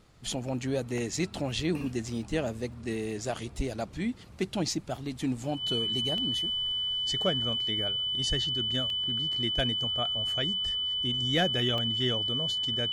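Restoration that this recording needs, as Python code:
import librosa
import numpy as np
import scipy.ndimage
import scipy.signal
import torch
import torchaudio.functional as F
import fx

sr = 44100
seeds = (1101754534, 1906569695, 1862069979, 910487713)

y = fx.notch(x, sr, hz=3000.0, q=30.0)
y = fx.fix_interpolate(y, sr, at_s=(0.98, 2.72, 6.18, 8.9, 11.78), length_ms=1.3)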